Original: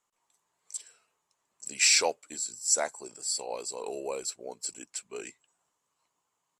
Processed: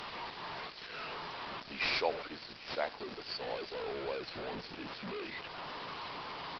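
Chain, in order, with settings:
linear delta modulator 64 kbit/s, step −29 dBFS
low-shelf EQ 190 Hz −3.5 dB
single-tap delay 792 ms −20.5 dB
downsampling to 11,025 Hz
level −3.5 dB
Opus 24 kbit/s 48,000 Hz

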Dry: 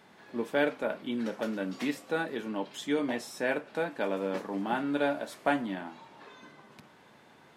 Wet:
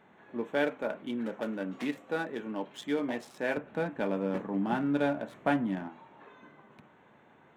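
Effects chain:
adaptive Wiener filter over 9 samples
0:03.57–0:05.89: bass and treble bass +10 dB, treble −2 dB
level −1.5 dB

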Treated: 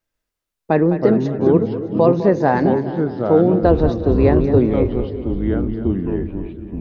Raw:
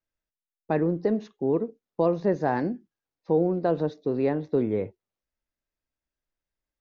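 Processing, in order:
0:03.62–0:04.59: sub-octave generator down 2 octaves, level +2 dB
echo with a time of its own for lows and highs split 430 Hz, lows 286 ms, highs 205 ms, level −11.5 dB
delay with pitch and tempo change per echo 138 ms, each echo −4 semitones, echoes 2, each echo −6 dB
level +9 dB

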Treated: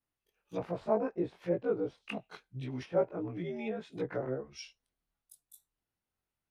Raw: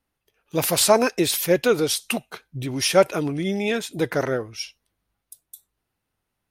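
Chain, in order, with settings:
every overlapping window played backwards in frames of 46 ms
treble cut that deepens with the level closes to 840 Hz, closed at −22 dBFS
level −8.5 dB

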